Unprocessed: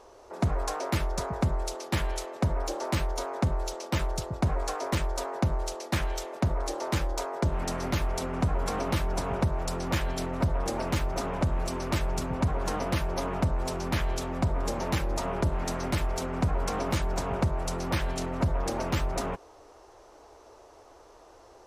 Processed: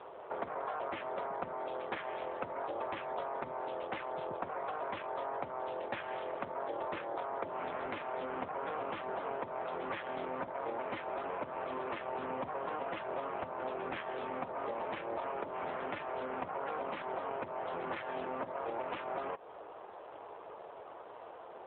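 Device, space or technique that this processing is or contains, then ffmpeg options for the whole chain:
voicemail: -filter_complex "[0:a]asettb=1/sr,asplit=3[link_01][link_02][link_03];[link_01]atrim=end=6.544[link_04];[link_02]atrim=start=6.54:end=7.18,asetpts=PTS-STARTPTS,afade=type=in:duration=0.004:curve=qsin,afade=type=out:start_time=0.636:duration=0.004:curve=qsin,lowshelf=frequency=280:gain=3[link_05];[link_03]atrim=start=7.176[link_06];[link_04][link_05]acrossfade=duration=0.004:curve1=hsin:curve2=qsin[link_07];[link_07][link_06]acrossfade=duration=0.004:curve1=qsin:curve2=hsin,highpass=420,lowpass=3100,acompressor=threshold=-41dB:ratio=10,volume=7.5dB" -ar 8000 -c:a libopencore_amrnb -b:a 7400

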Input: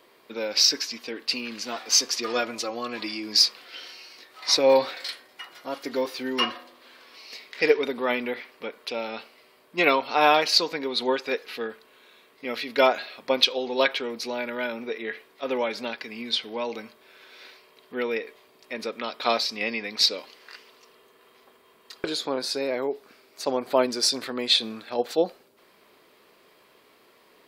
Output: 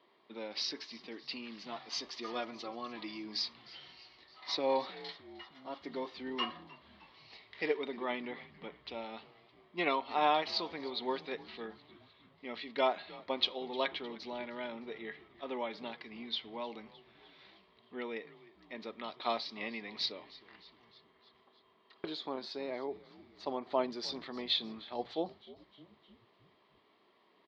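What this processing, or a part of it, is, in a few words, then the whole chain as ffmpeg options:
frequency-shifting delay pedal into a guitar cabinet: -filter_complex "[0:a]asettb=1/sr,asplit=3[link_01][link_02][link_03];[link_01]atrim=end=20.124[link_04];[link_02]atrim=start=20.12:end=21.98,asetpts=PTS-STARTPTS,afade=type=in:duration=0.004:curve=qsin,afade=type=out:start_time=1.856:duration=0.004:curve=qsin,acrossover=split=3500[link_05][link_06];[link_06]acompressor=threshold=-59dB:ratio=4:attack=1:release=60[link_07];[link_05][link_07]amix=inputs=2:normalize=0[link_08];[link_03]atrim=start=21.976[link_09];[link_04][link_08]acrossfade=duration=0.004:curve1=hsin:curve2=qsin[link_10];[link_10][link_09]acrossfade=duration=0.004:curve1=qsin:curve2=hsin,equalizer=frequency=480:width=1.5:gain=-2,asplit=6[link_11][link_12][link_13][link_14][link_15][link_16];[link_12]adelay=307,afreqshift=-92,volume=-20.5dB[link_17];[link_13]adelay=614,afreqshift=-184,volume=-24.9dB[link_18];[link_14]adelay=921,afreqshift=-276,volume=-29.4dB[link_19];[link_15]adelay=1228,afreqshift=-368,volume=-33.8dB[link_20];[link_16]adelay=1535,afreqshift=-460,volume=-38.2dB[link_21];[link_11][link_17][link_18][link_19][link_20][link_21]amix=inputs=6:normalize=0,highpass=99,equalizer=frequency=130:width_type=q:width=4:gain=-5,equalizer=frequency=260:width_type=q:width=4:gain=-3,equalizer=frequency=500:width_type=q:width=4:gain=-7,equalizer=frequency=1500:width_type=q:width=4:gain=-10,equalizer=frequency=2500:width_type=q:width=4:gain=-8,lowpass=frequency=3700:width=0.5412,lowpass=frequency=3700:width=1.3066,volume=-7dB"

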